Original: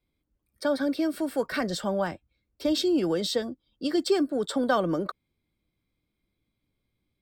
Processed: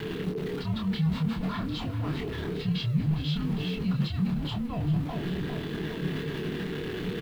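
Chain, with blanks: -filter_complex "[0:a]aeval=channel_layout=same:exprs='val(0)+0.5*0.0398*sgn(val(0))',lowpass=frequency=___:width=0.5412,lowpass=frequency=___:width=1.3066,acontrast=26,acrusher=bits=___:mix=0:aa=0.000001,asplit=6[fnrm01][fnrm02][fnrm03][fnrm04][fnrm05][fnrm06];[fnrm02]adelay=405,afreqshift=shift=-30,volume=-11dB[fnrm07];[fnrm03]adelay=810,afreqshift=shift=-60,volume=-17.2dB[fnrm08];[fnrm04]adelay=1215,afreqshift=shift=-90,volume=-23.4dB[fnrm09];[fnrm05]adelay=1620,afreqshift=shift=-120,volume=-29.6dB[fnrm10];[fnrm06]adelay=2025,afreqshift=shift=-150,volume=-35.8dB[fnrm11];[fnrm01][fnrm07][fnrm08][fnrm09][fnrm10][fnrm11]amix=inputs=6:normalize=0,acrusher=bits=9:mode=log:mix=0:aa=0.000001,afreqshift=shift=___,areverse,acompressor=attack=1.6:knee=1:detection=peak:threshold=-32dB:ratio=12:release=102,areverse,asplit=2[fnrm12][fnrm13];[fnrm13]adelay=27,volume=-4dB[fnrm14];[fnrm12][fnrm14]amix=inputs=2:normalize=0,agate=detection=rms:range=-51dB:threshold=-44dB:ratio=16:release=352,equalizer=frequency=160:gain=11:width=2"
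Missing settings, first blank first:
4500, 4500, 7, -480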